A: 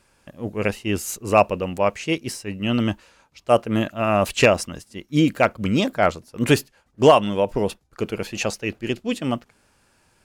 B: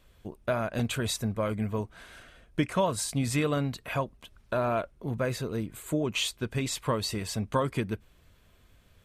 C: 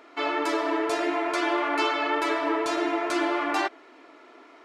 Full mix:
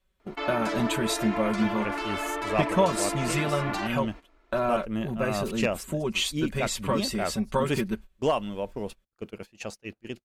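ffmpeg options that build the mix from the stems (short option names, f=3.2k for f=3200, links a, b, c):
-filter_complex "[0:a]agate=range=-33dB:threshold=-45dB:ratio=3:detection=peak,adelay=1200,volume=-12dB[a];[1:a]aecho=1:1:5.3:0.79,asubboost=boost=3:cutoff=64,volume=-0.5dB[b];[2:a]alimiter=limit=-23dB:level=0:latency=1:release=171,adelay=200,volume=0.5dB[c];[a][b][c]amix=inputs=3:normalize=0,adynamicequalizer=threshold=0.00562:dfrequency=220:dqfactor=6.1:tfrequency=220:tqfactor=6.1:attack=5:release=100:ratio=0.375:range=2.5:mode=boostabove:tftype=bell,agate=range=-16dB:threshold=-38dB:ratio=16:detection=peak"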